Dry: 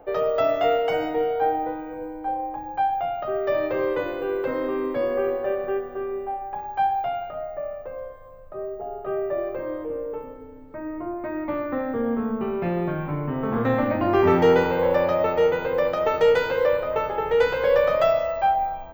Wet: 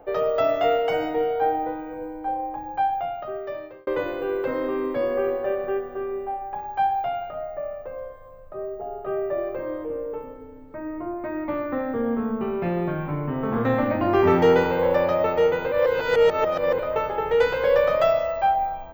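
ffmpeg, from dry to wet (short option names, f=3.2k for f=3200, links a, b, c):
-filter_complex "[0:a]asplit=4[a][b][c][d];[a]atrim=end=3.87,asetpts=PTS-STARTPTS,afade=t=out:st=2.86:d=1.01[e];[b]atrim=start=3.87:end=15.722,asetpts=PTS-STARTPTS,afade=t=in:d=0.004:c=hsin[f];[c]atrim=start=15.718:end=16.792,asetpts=PTS-STARTPTS,areverse[g];[d]atrim=start=16.788[h];[e][f]concat=n=2:v=0:a=1[i];[i][g]acrossfade=d=0.004:c1=hsin:c2=hsin[j];[j][h]acrossfade=d=0.004:c1=hsin:c2=hsin"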